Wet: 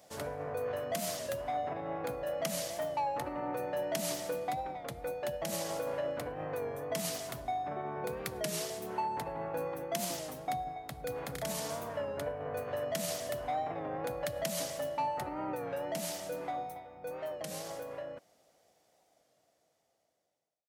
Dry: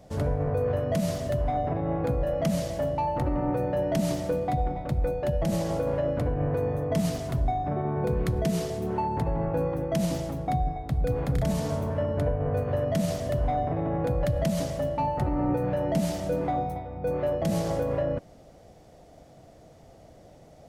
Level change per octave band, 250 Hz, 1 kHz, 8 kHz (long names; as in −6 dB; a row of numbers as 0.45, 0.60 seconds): −14.5, −5.5, +2.5 decibels